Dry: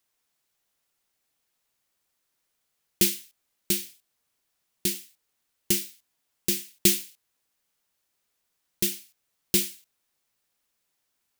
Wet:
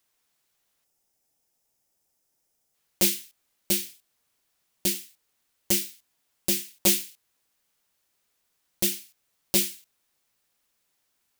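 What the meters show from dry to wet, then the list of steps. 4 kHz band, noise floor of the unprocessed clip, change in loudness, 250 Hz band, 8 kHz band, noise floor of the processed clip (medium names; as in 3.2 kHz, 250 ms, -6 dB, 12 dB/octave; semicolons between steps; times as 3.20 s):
+0.5 dB, -78 dBFS, +0.5 dB, -0.5 dB, +1.0 dB, -75 dBFS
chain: time-frequency box 0.84–2.75 s, 930–4800 Hz -8 dB; transformer saturation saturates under 1.6 kHz; trim +3 dB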